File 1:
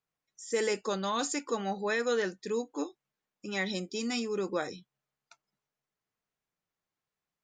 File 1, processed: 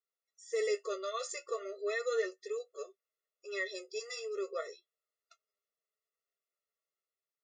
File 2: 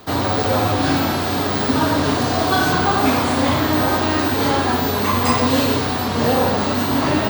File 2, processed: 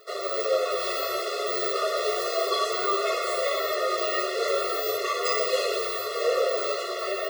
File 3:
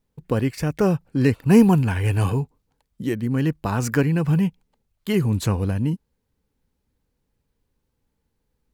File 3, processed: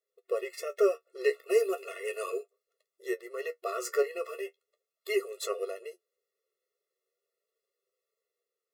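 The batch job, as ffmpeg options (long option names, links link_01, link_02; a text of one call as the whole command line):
ffmpeg -i in.wav -af "flanger=delay=9.3:depth=5:regen=42:speed=0.37:shape=triangular,dynaudnorm=framelen=110:gausssize=9:maxgain=3dB,afftfilt=real='re*eq(mod(floor(b*sr/1024/360),2),1)':imag='im*eq(mod(floor(b*sr/1024/360),2),1)':win_size=1024:overlap=0.75,volume=-2dB" out.wav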